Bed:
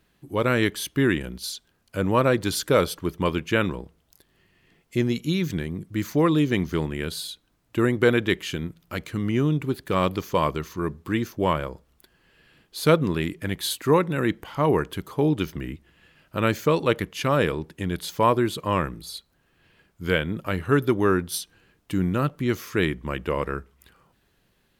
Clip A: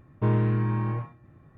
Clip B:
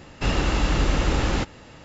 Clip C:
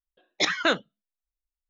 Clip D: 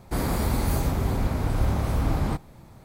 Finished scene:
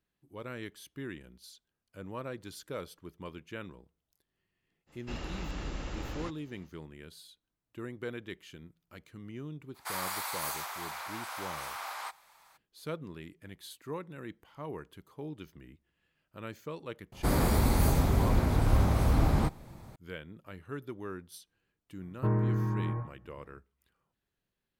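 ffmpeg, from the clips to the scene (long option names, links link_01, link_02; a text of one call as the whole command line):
ffmpeg -i bed.wav -i cue0.wav -i cue1.wav -i cue2.wav -i cue3.wav -filter_complex "[4:a]asplit=2[link_01][link_02];[0:a]volume=-20dB[link_03];[link_01]highpass=frequency=910:width=0.5412,highpass=frequency=910:width=1.3066[link_04];[1:a]lowpass=frequency=1800:width=0.5412,lowpass=frequency=1800:width=1.3066[link_05];[2:a]atrim=end=1.84,asetpts=PTS-STARTPTS,volume=-17dB,afade=type=in:duration=0.05,afade=type=out:start_time=1.79:duration=0.05,adelay=4860[link_06];[link_04]atrim=end=2.84,asetpts=PTS-STARTPTS,volume=-1dB,afade=type=in:duration=0.02,afade=type=out:start_time=2.82:duration=0.02,adelay=9740[link_07];[link_02]atrim=end=2.84,asetpts=PTS-STARTPTS,volume=-1dB,afade=type=in:duration=0.004:curve=hsin,afade=type=out:start_time=2.836:duration=0.004:curve=hsin,adelay=17120[link_08];[link_05]atrim=end=1.57,asetpts=PTS-STARTPTS,volume=-5dB,afade=type=in:duration=0.004:curve=hsin,afade=type=out:start_time=1.566:duration=0.004:curve=hsin,adelay=22010[link_09];[link_03][link_06][link_07][link_08][link_09]amix=inputs=5:normalize=0" out.wav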